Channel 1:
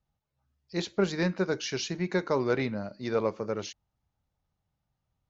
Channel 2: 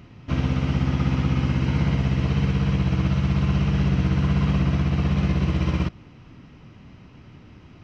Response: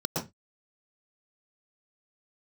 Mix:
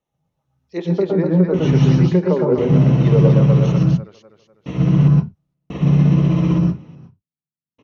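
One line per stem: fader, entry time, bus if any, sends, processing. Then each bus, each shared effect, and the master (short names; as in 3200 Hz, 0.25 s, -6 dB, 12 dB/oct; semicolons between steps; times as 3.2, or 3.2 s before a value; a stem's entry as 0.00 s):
+3.0 dB, 0.00 s, send -7.5 dB, echo send -4.5 dB, treble ducked by the level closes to 720 Hz, closed at -22.5 dBFS
-3.5 dB, 0.70 s, send -5 dB, no echo send, step gate "....xx...xxxxxx" 72 bpm -60 dB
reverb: on, RT60 0.20 s, pre-delay 0.109 s
echo: feedback echo 0.249 s, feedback 41%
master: dry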